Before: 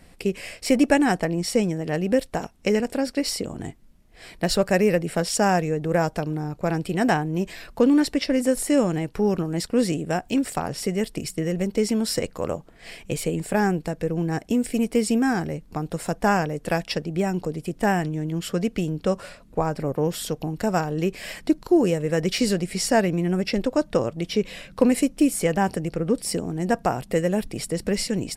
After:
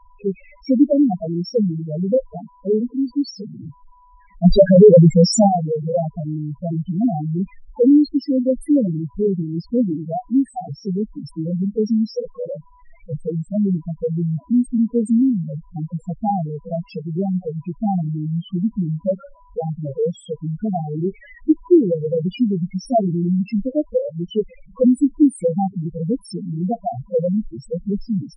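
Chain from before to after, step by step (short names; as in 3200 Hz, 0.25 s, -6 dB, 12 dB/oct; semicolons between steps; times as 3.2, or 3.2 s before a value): whine 990 Hz -52 dBFS; 4.44–5.48 sample leveller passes 5; loudest bins only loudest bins 2; mismatched tape noise reduction decoder only; gain +7 dB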